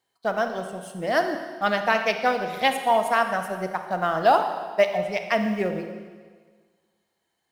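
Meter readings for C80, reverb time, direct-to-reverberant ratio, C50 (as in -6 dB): 8.5 dB, 1.6 s, 6.0 dB, 7.0 dB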